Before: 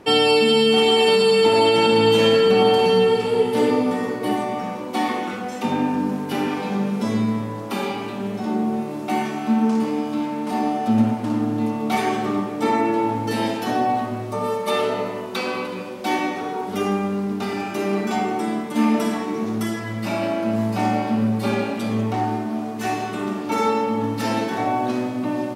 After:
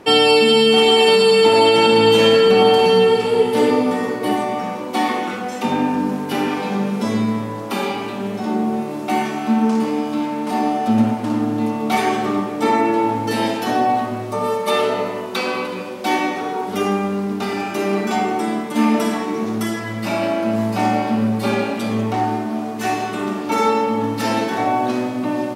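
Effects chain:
low-shelf EQ 190 Hz −5 dB
level +4 dB

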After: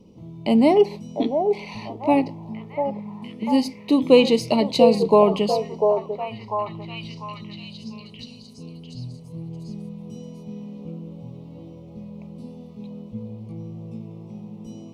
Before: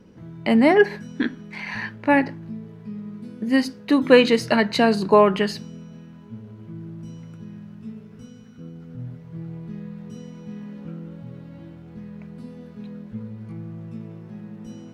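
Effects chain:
Butterworth band-reject 1,600 Hz, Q 1.1
echo through a band-pass that steps 695 ms, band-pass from 590 Hz, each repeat 0.7 octaves, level −2 dB

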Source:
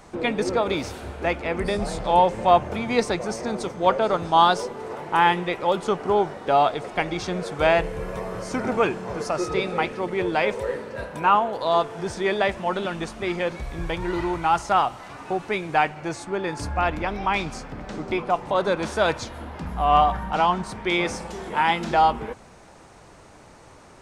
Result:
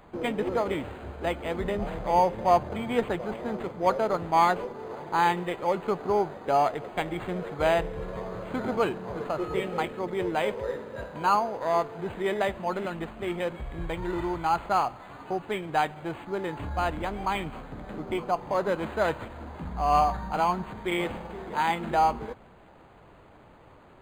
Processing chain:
linearly interpolated sample-rate reduction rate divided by 8×
level −4 dB

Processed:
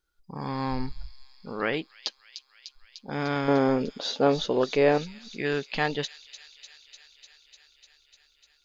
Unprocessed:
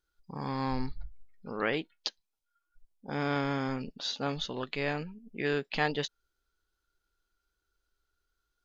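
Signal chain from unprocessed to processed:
0:03.48–0:04.98: parametric band 470 Hz +13 dB 1.8 octaves
delay with a high-pass on its return 299 ms, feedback 78%, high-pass 5,100 Hz, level −5.5 dB
level +2.5 dB

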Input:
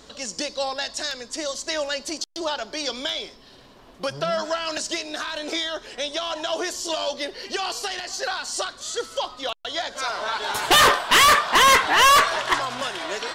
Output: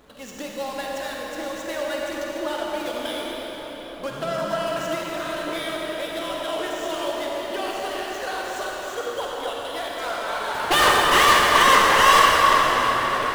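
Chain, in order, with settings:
running median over 9 samples
convolution reverb RT60 5.8 s, pre-delay 40 ms, DRR −4 dB
level −3.5 dB

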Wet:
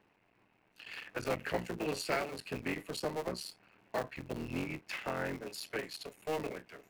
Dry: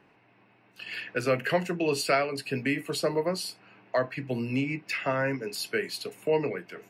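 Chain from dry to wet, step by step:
sub-harmonics by changed cycles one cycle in 3, muted
level −7.5 dB

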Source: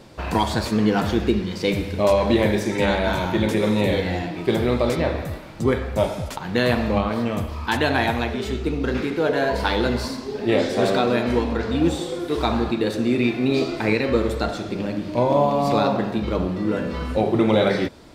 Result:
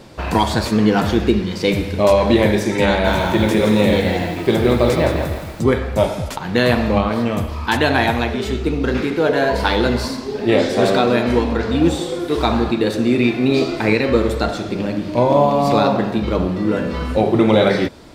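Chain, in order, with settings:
0:02.88–0:05.62: feedback echo at a low word length 166 ms, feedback 35%, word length 7 bits, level −6.5 dB
level +4.5 dB

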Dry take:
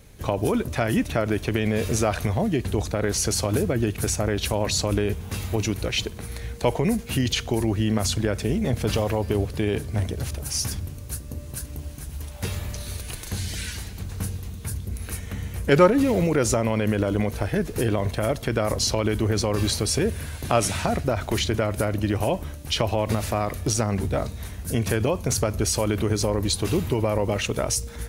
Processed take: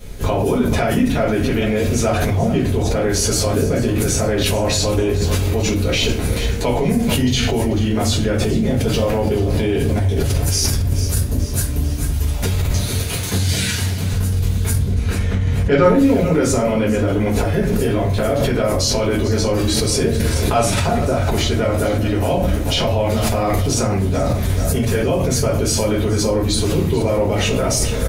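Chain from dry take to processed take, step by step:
0:12.70–0:14.12: high-pass filter 87 Hz 24 dB per octave
0:14.74–0:15.84: high-frequency loss of the air 95 metres
repeating echo 437 ms, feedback 49%, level −15 dB
convolution reverb, pre-delay 4 ms, DRR −7 dB
in parallel at +1 dB: compressor whose output falls as the input rises −20 dBFS, ratio −0.5
on the sum: level −5.5 dB

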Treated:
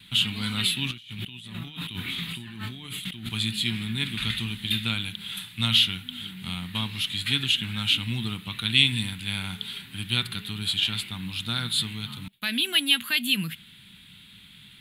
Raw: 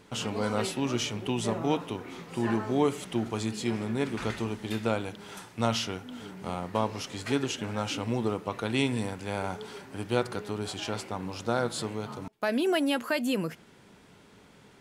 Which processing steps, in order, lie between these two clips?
noise gate with hold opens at −48 dBFS
drawn EQ curve 190 Hz 0 dB, 520 Hz −27 dB, 3,700 Hz +15 dB, 5,600 Hz −12 dB, 11,000 Hz +9 dB
0:00.91–0:03.29: compressor whose output falls as the input rises −42 dBFS, ratio −1
level +4 dB

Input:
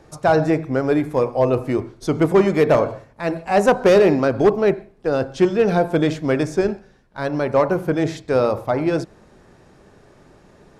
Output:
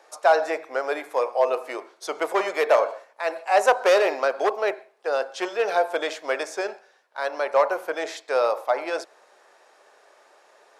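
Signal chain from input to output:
high-pass filter 550 Hz 24 dB per octave

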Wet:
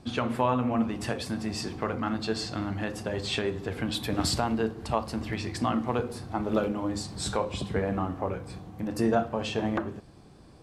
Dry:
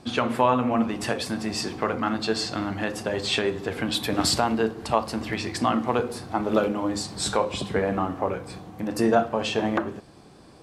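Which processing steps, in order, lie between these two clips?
low-shelf EQ 140 Hz +11.5 dB
level −6 dB

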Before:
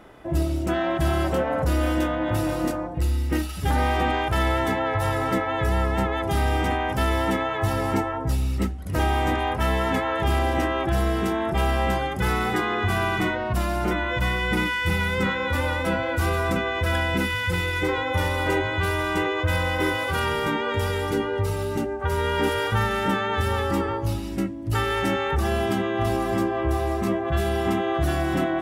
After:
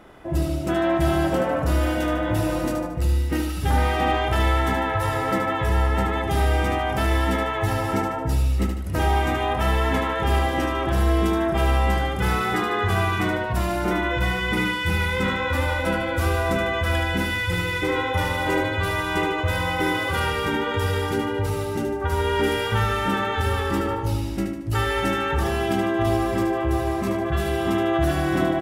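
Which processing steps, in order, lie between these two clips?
repeating echo 75 ms, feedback 48%, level −6 dB

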